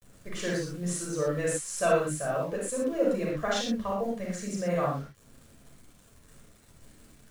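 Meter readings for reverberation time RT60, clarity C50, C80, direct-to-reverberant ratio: no single decay rate, 0.0 dB, 5.0 dB, -5.0 dB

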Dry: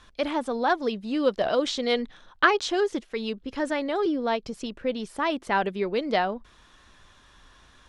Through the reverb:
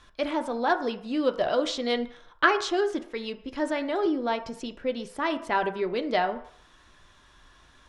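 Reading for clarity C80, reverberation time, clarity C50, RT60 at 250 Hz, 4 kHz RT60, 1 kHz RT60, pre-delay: 15.5 dB, 0.60 s, 13.0 dB, 0.45 s, 0.65 s, 0.60 s, 3 ms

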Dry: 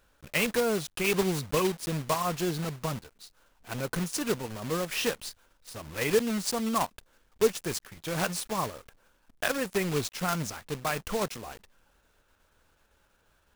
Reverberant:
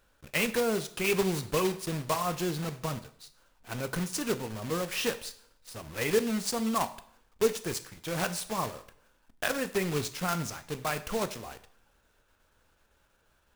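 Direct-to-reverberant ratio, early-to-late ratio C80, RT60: 11.0 dB, 18.0 dB, 0.65 s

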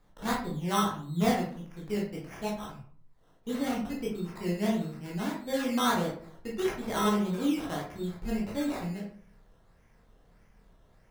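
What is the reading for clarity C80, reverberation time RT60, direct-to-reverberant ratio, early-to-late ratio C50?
10.0 dB, 0.50 s, -3.5 dB, 5.0 dB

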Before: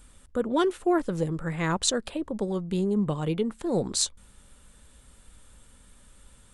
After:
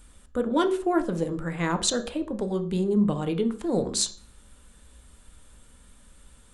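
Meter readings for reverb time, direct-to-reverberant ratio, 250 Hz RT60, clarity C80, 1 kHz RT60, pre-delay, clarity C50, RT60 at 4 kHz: 0.45 s, 8.5 dB, 0.50 s, 18.0 dB, 0.45 s, 3 ms, 13.5 dB, 0.40 s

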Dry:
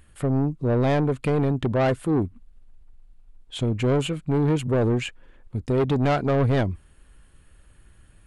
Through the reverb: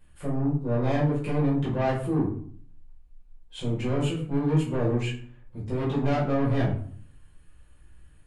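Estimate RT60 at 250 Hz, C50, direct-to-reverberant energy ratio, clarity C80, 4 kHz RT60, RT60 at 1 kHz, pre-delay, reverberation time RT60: 0.70 s, 5.0 dB, -8.0 dB, 10.0 dB, 0.35 s, 0.50 s, 6 ms, 0.55 s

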